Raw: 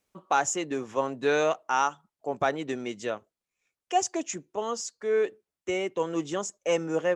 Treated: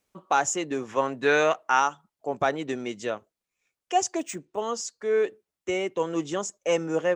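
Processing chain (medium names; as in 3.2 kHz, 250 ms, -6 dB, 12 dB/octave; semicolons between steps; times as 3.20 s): 0.88–1.80 s: peaking EQ 1.8 kHz +6 dB 1.3 oct; 4.18–4.60 s: decimation joined by straight lines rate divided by 3×; trim +1.5 dB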